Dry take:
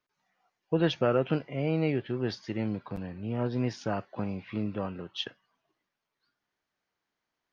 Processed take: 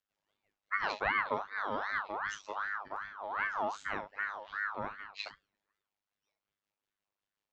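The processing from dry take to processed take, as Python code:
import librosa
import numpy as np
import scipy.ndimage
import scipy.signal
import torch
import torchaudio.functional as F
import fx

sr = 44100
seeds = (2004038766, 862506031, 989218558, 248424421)

y = fx.peak_eq(x, sr, hz=150.0, db=10.5, octaves=0.48)
y = fx.robotise(y, sr, hz=101.0)
y = fx.rotary(y, sr, hz=5.5)
y = fx.room_early_taps(y, sr, ms=(38, 67), db=(-8.0, -11.5))
y = fx.ring_lfo(y, sr, carrier_hz=1200.0, swing_pct=40, hz=2.6)
y = F.gain(torch.from_numpy(y), -1.5).numpy()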